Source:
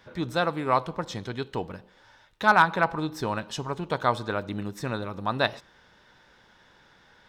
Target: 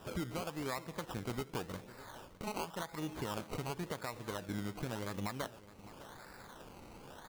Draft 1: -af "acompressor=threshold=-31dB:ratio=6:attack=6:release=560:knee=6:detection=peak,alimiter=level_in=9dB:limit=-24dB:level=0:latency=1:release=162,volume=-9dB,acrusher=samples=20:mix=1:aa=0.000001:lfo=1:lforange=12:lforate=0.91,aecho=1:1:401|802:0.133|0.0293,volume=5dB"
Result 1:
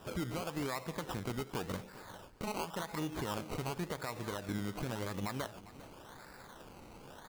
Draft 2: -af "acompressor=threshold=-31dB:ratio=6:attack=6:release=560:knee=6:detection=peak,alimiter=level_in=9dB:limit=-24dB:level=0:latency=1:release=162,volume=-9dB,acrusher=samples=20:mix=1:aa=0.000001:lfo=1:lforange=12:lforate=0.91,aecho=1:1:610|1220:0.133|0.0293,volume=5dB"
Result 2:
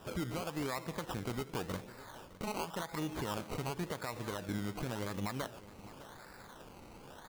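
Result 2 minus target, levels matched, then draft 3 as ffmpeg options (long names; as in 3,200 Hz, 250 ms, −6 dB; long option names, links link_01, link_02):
downward compressor: peak gain reduction −6.5 dB
-af "acompressor=threshold=-39dB:ratio=6:attack=6:release=560:knee=6:detection=peak,alimiter=level_in=9dB:limit=-24dB:level=0:latency=1:release=162,volume=-9dB,acrusher=samples=20:mix=1:aa=0.000001:lfo=1:lforange=12:lforate=0.91,aecho=1:1:610|1220:0.133|0.0293,volume=5dB"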